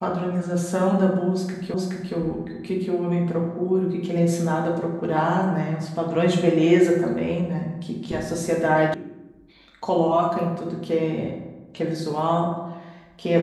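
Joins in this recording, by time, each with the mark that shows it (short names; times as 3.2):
1.74 repeat of the last 0.42 s
8.94 sound cut off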